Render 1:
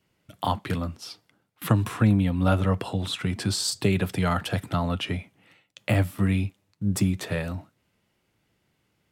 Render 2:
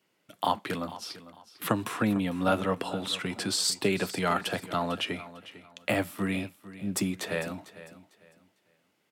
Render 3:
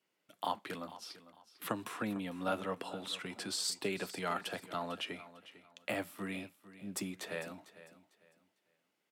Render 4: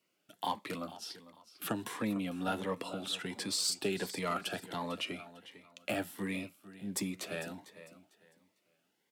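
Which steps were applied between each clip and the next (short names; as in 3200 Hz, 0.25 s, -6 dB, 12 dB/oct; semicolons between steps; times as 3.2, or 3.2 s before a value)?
HPF 260 Hz 12 dB/oct; feedback echo 0.45 s, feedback 27%, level -16 dB
HPF 220 Hz 6 dB/oct; gain -8.5 dB
in parallel at -3 dB: soft clip -32 dBFS, distortion -12 dB; on the sum: cascading phaser rising 1.4 Hz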